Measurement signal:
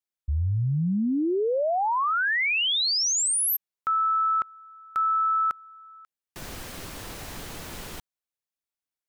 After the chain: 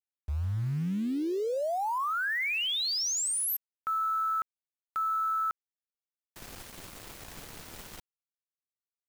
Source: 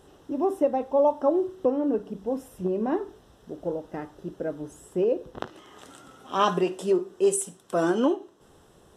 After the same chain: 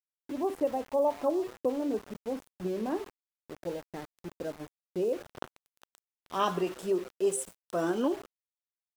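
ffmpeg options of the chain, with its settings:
ffmpeg -i in.wav -filter_complex "[0:a]asplit=4[link_01][link_02][link_03][link_04];[link_02]adelay=139,afreqshift=130,volume=-22dB[link_05];[link_03]adelay=278,afreqshift=260,volume=-29.3dB[link_06];[link_04]adelay=417,afreqshift=390,volume=-36.7dB[link_07];[link_01][link_05][link_06][link_07]amix=inputs=4:normalize=0,aeval=exprs='val(0)*gte(abs(val(0)),0.0158)':channel_layout=same,volume=-6dB" out.wav

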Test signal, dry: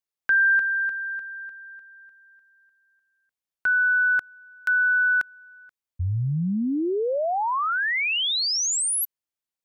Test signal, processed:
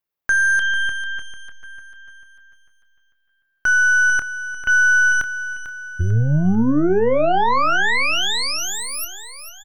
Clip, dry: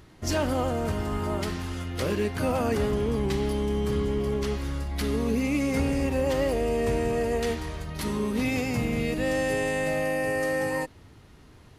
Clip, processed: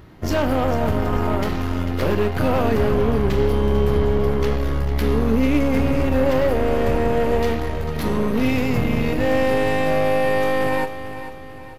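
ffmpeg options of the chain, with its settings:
ffmpeg -i in.wav -filter_complex "[0:a]aexciter=amount=8.1:drive=3.6:freq=12000,asplit=2[link_01][link_02];[link_02]alimiter=limit=-19.5dB:level=0:latency=1,volume=2.5dB[link_03];[link_01][link_03]amix=inputs=2:normalize=0,aemphasis=mode=reproduction:type=75kf,aeval=exprs='0.316*(cos(1*acos(clip(val(0)/0.316,-1,1)))-cos(1*PI/2))+0.0355*(cos(6*acos(clip(val(0)/0.316,-1,1)))-cos(6*PI/2))':channel_layout=same,asplit=2[link_04][link_05];[link_05]adelay=27,volume=-12dB[link_06];[link_04][link_06]amix=inputs=2:normalize=0,aecho=1:1:446|892|1338|1784|2230:0.266|0.12|0.0539|0.0242|0.0109" out.wav

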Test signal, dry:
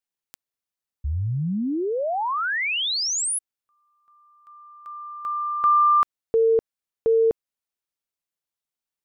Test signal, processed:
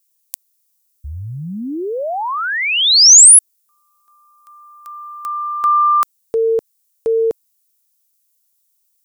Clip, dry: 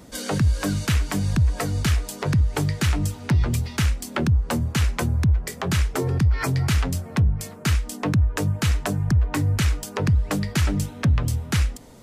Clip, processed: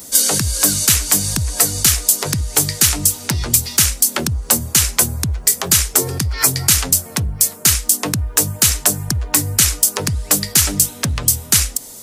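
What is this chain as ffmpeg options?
ffmpeg -i in.wav -af "bass=frequency=250:gain=-6,treble=frequency=4000:gain=11,crystalizer=i=2:c=0,apsyclip=5dB,volume=-1.5dB" out.wav

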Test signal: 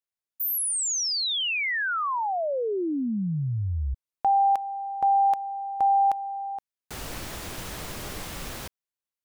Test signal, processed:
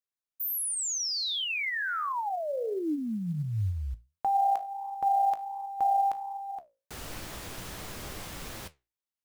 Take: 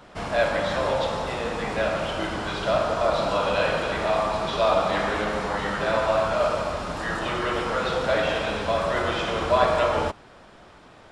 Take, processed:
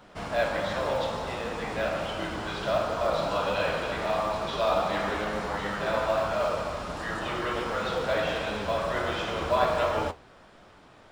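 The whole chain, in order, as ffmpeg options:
ffmpeg -i in.wav -af "flanger=delay=9.2:depth=9.5:regen=67:speed=1.4:shape=sinusoidal,acrusher=bits=9:mode=log:mix=0:aa=0.000001" out.wav

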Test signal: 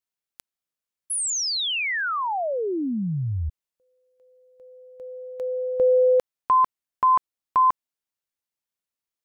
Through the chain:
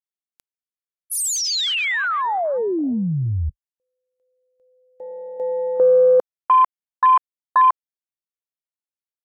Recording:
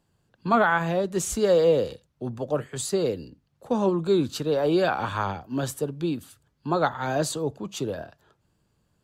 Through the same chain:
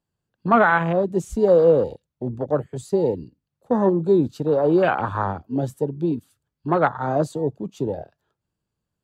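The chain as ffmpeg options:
ffmpeg -i in.wav -af "afwtdn=0.0355,volume=4.5dB" out.wav

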